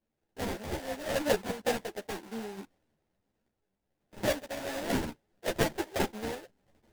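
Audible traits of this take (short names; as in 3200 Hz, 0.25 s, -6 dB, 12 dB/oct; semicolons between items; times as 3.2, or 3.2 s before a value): random-step tremolo; aliases and images of a low sample rate 1200 Hz, jitter 20%; a shimmering, thickened sound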